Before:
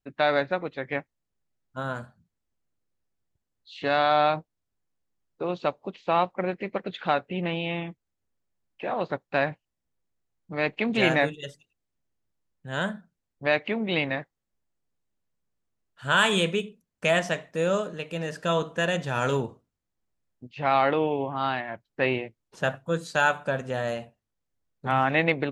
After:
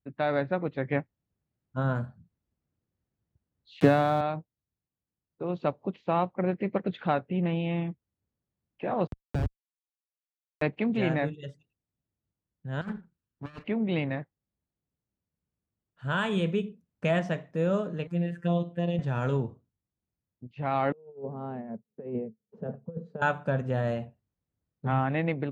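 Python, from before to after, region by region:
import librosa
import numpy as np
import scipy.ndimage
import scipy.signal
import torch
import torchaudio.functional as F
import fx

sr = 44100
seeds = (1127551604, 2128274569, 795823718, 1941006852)

y = fx.chain(x, sr, fx.low_shelf(hz=370.0, db=8.0),
    fx.quant_dither(seeds[0], bits=6, dither='none'),
    fx.band_squash(depth_pct=100), at=(3.8, 4.21))
y = fx.chain(y, sr, fx.high_shelf(hz=2000.0, db=12.0),
    fx.schmitt(flips_db=-17.0),
    fx.band_squash(depth_pct=40), at=(9.07, 10.62))
y = fx.chain(y, sr, fx.lower_of_two(delay_ms=0.71),
    fx.low_shelf(hz=450.0, db=-4.5),
    fx.over_compress(threshold_db=-35.0, ratio=-0.5), at=(12.81, 13.64))
y = fx.chain(y, sr, fx.robotise(hz=172.0),
    fx.env_phaser(low_hz=450.0, high_hz=1500.0, full_db=-25.5), at=(18.07, 18.99))
y = fx.chain(y, sr, fx.double_bandpass(hz=310.0, octaves=0.98),
    fx.over_compress(threshold_db=-38.0, ratio=-0.5), at=(20.92, 23.22))
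y = scipy.signal.sosfilt(scipy.signal.butter(2, 94.0, 'highpass', fs=sr, output='sos'), y)
y = fx.riaa(y, sr, side='playback')
y = fx.rider(y, sr, range_db=4, speed_s=0.5)
y = F.gain(torch.from_numpy(y), -5.0).numpy()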